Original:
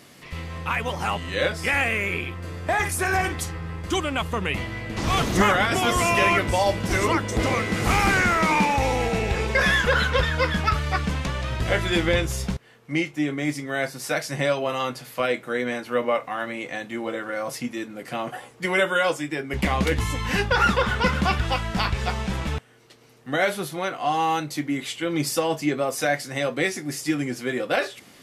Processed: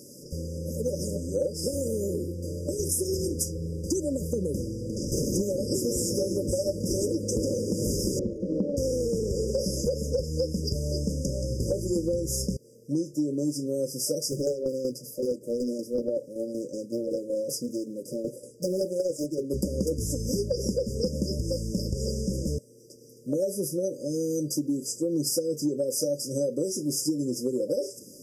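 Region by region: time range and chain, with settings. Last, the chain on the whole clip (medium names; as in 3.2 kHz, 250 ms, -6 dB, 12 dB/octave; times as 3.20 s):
4.67–5.12 s: low-pass 12 kHz + compression, threshold -28 dBFS
8.19–8.77 s: one-bit delta coder 64 kbps, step -27.5 dBFS + resonant low-pass 1.3 kHz, resonance Q 16 + compression, threshold -9 dBFS
14.28–19.50 s: tremolo saw down 5.3 Hz, depth 55% + loudspeaker Doppler distortion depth 0.86 ms
whole clip: FFT band-reject 600–4800 Hz; bass shelf 140 Hz -10.5 dB; compression, threshold -30 dBFS; trim +6 dB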